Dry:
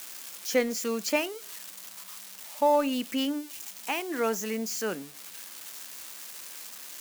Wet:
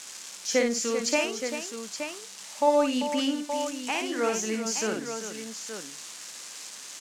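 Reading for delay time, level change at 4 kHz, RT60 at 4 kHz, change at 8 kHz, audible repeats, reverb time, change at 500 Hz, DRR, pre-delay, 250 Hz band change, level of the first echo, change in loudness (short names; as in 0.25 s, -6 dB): 55 ms, +4.0 dB, none, +5.5 dB, 3, none, +2.5 dB, none, none, +2.0 dB, -5.0 dB, +2.5 dB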